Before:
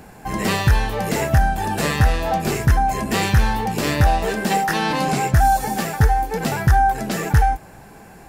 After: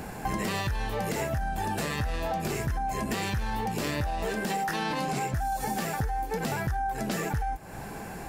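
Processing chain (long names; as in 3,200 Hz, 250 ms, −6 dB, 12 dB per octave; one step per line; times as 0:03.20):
brickwall limiter −13 dBFS, peak gain reduction 6 dB
downward compressor 6 to 1, threshold −32 dBFS, peak gain reduction 15 dB
level +4 dB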